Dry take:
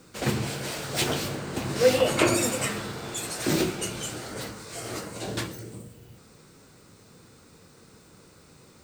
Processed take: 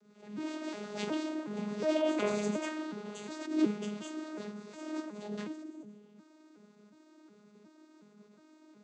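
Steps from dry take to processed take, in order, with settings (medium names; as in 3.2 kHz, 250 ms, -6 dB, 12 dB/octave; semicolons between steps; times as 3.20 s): vocoder on a broken chord bare fifth, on G#3, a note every 364 ms; attacks held to a fixed rise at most 100 dB/s; trim -4 dB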